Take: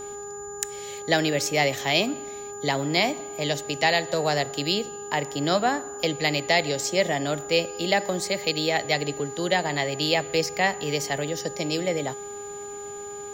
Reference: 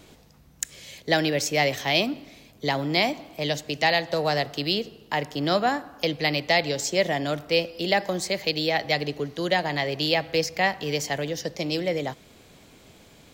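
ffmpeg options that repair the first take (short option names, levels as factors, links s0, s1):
-af "bandreject=f=408.2:t=h:w=4,bandreject=f=816.4:t=h:w=4,bandreject=f=1224.6:t=h:w=4,bandreject=f=1632.8:t=h:w=4,bandreject=f=7000:w=30"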